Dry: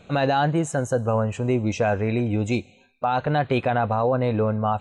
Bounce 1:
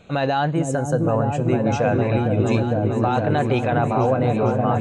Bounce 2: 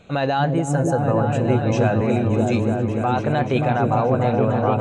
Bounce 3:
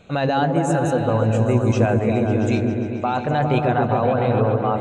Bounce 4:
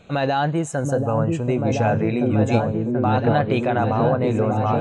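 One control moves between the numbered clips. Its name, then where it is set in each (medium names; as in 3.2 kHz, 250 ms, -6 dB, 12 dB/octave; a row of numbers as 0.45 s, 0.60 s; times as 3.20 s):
delay with an opening low-pass, time: 456 ms, 290 ms, 136 ms, 733 ms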